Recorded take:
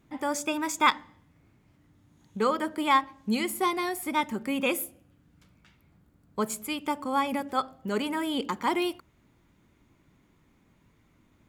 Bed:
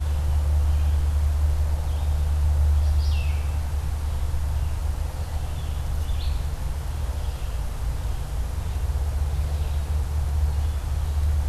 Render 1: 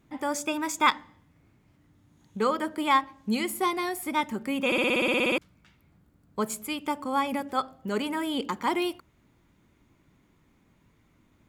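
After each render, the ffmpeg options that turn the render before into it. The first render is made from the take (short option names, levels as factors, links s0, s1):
-filter_complex "[0:a]asplit=13[s0][s1][s2][s3][s4][s5][s6][s7][s8][s9][s10][s11][s12];[s0]atrim=end=4.722[s13];[s1]atrim=start=4.658:end=4.722[s14];[s2]atrim=start=4.658:end=4.722[s15];[s3]atrim=start=4.658:end=4.722[s16];[s4]atrim=start=4.658:end=4.722[s17];[s5]atrim=start=4.658:end=4.722[s18];[s6]atrim=start=4.658:end=4.722[s19];[s7]atrim=start=4.658:end=4.722[s20];[s8]atrim=start=4.658:end=4.722[s21];[s9]atrim=start=4.658:end=4.722[s22];[s10]atrim=start=4.658:end=4.722[s23];[s11]atrim=start=4.658:end=4.722[s24];[s12]atrim=start=5.378[s25];[s13][s14]acrossfade=d=0.004:c1=hsin:c2=hsin[s26];[s26][s15]acrossfade=d=0.004:c1=hsin:c2=hsin[s27];[s27][s16]acrossfade=d=0.004:c1=hsin:c2=hsin[s28];[s28][s17]acrossfade=d=0.004:c1=hsin:c2=hsin[s29];[s29][s18]acrossfade=d=0.004:c1=hsin:c2=hsin[s30];[s30][s19]acrossfade=d=0.004:c1=hsin:c2=hsin[s31];[s31][s20]acrossfade=d=0.004:c1=hsin:c2=hsin[s32];[s32][s21]acrossfade=d=0.004:c1=hsin:c2=hsin[s33];[s33][s22]acrossfade=d=0.004:c1=hsin:c2=hsin[s34];[s34][s23]acrossfade=d=0.004:c1=hsin:c2=hsin[s35];[s35][s24]acrossfade=d=0.004:c1=hsin:c2=hsin[s36];[s36][s25]acrossfade=d=0.004:c1=hsin:c2=hsin"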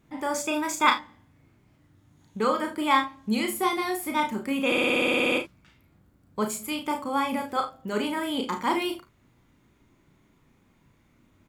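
-filter_complex "[0:a]asplit=2[s0][s1];[s1]adelay=33,volume=0.531[s2];[s0][s2]amix=inputs=2:normalize=0,asplit=2[s3][s4];[s4]aecho=0:1:41|53:0.335|0.178[s5];[s3][s5]amix=inputs=2:normalize=0"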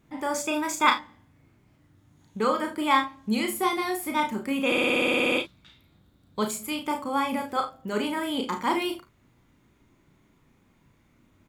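-filter_complex "[0:a]asettb=1/sr,asplit=3[s0][s1][s2];[s0]atrim=end=5.384[s3];[s1]atrim=start=5.38:end=6.51,asetpts=PTS-STARTPTS,afade=t=in:d=0.004:c=qsin,afade=t=out:st=1.126:d=0.004:c=qsin,equalizer=f=3700:w=3.4:g=15[s4];[s2]atrim=start=6.506[s5];[s3][s4]acrossfade=d=0.004:c1=hsin:c2=qsin[s6];[s6][s5]acrossfade=d=0.004:c1=qsin:c2=hsin"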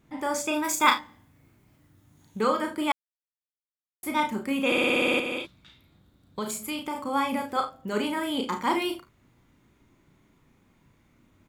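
-filter_complex "[0:a]asettb=1/sr,asplit=3[s0][s1][s2];[s0]atrim=end=0.644[s3];[s1]atrim=start=0.64:end=2.41,asetpts=PTS-STARTPTS,afade=t=in:d=0.004:c=qsin,afade=t=out:st=1.766:d=0.004:c=qsin,highshelf=f=9500:g=12[s4];[s2]atrim=start=2.406[s5];[s3][s4]acrossfade=d=0.004:c1=hsin:c2=qsin[s6];[s6][s5]acrossfade=d=0.004:c1=qsin:c2=hsin,asettb=1/sr,asplit=3[s7][s8][s9];[s7]atrim=end=5.194[s10];[s8]atrim=start=5.19:end=7.06,asetpts=PTS-STARTPTS,afade=t=in:d=0.004:c=qsin,afade=t=out:st=1.866:d=0.004:c=qsin,acompressor=threshold=0.0447:ratio=6:attack=3.2:release=140:knee=1:detection=peak[s11];[s9]atrim=start=7.056[s12];[s10][s11]acrossfade=d=0.004:c1=hsin:c2=qsin[s13];[s13][s12]acrossfade=d=0.004:c1=qsin:c2=hsin,asplit=3[s14][s15][s16];[s14]atrim=end=2.92,asetpts=PTS-STARTPTS,afade=t=out:st=2.916:d=0.004:c=hsin[s17];[s15]atrim=start=2.92:end=4.03,asetpts=PTS-STARTPTS,volume=0[s18];[s16]atrim=start=4.03,asetpts=PTS-STARTPTS,afade=t=in:d=0.004:c=hsin[s19];[s17][s18][s19]concat=n=3:v=0:a=1"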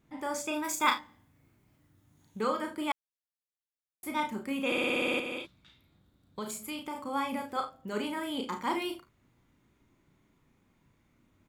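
-af "volume=0.501"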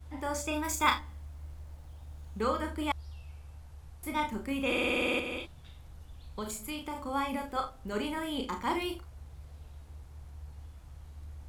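-filter_complex "[1:a]volume=0.0708[s0];[0:a][s0]amix=inputs=2:normalize=0"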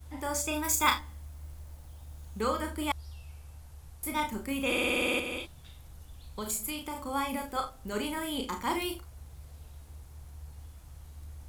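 -af "highshelf=f=6500:g=12"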